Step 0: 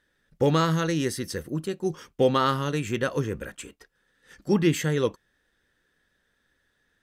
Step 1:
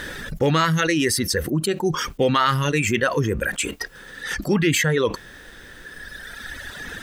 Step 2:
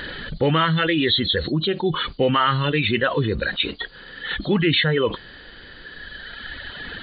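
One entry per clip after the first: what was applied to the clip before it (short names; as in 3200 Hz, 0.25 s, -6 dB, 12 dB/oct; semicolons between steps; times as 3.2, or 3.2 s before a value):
reverb removal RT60 1.7 s; dynamic EQ 2200 Hz, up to +7 dB, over -44 dBFS, Q 1.2; fast leveller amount 70%
nonlinear frequency compression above 2900 Hz 4:1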